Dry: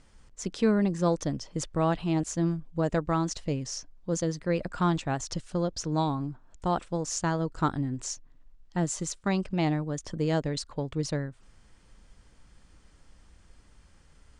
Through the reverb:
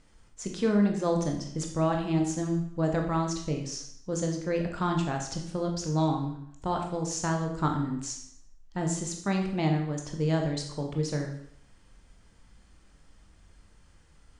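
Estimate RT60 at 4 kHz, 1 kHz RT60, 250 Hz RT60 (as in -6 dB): 0.65 s, 0.70 s, 0.65 s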